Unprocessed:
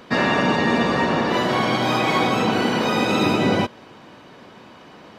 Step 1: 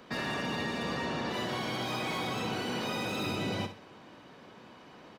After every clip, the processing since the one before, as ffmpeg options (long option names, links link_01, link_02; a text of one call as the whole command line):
ffmpeg -i in.wav -filter_complex "[0:a]acrossover=split=120|2600[link_01][link_02][link_03];[link_02]alimiter=limit=-20dB:level=0:latency=1[link_04];[link_03]asoftclip=type=hard:threshold=-30.5dB[link_05];[link_01][link_04][link_05]amix=inputs=3:normalize=0,aecho=1:1:62|124|186:0.299|0.0925|0.0287,volume=-8.5dB" out.wav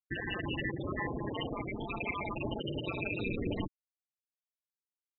ffmpeg -i in.wav -af "afftfilt=real='re*gte(hypot(re,im),0.0708)':imag='im*gte(hypot(re,im),0.0708)':win_size=1024:overlap=0.75,highshelf=frequency=3900:width_type=q:width=3:gain=-12.5,aeval=exprs='val(0)*sin(2*PI*96*n/s)':channel_layout=same,volume=4dB" out.wav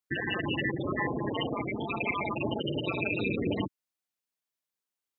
ffmpeg -i in.wav -af "highpass=110,volume=5.5dB" out.wav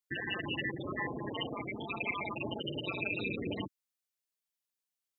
ffmpeg -i in.wav -af "highshelf=frequency=2200:gain=7.5,volume=-7.5dB" out.wav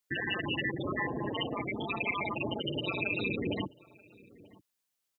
ffmpeg -i in.wav -filter_complex "[0:a]asplit=2[link_01][link_02];[link_02]alimiter=level_in=9.5dB:limit=-24dB:level=0:latency=1:release=296,volume=-9.5dB,volume=1dB[link_03];[link_01][link_03]amix=inputs=2:normalize=0,asplit=2[link_04][link_05];[link_05]adelay=932.9,volume=-22dB,highshelf=frequency=4000:gain=-21[link_06];[link_04][link_06]amix=inputs=2:normalize=0" out.wav